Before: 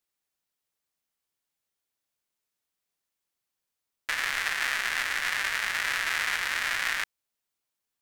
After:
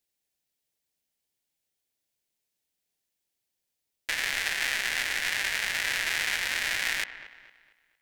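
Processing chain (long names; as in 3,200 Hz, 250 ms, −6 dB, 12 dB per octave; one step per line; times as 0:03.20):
parametric band 1,200 Hz −11 dB 0.79 octaves
delay with a low-pass on its return 229 ms, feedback 37%, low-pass 2,500 Hz, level −13 dB
level +2.5 dB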